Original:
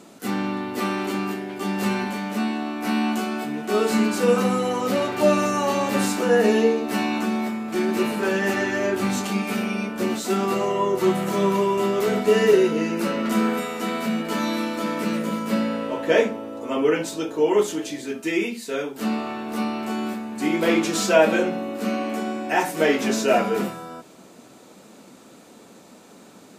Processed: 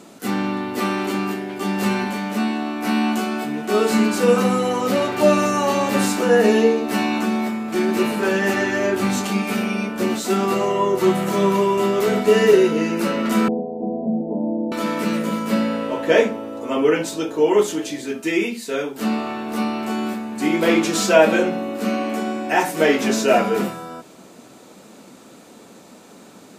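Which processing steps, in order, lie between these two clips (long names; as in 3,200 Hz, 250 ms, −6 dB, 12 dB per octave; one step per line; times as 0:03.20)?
0:13.48–0:14.72: Butterworth low-pass 810 Hz 72 dB per octave
level +3 dB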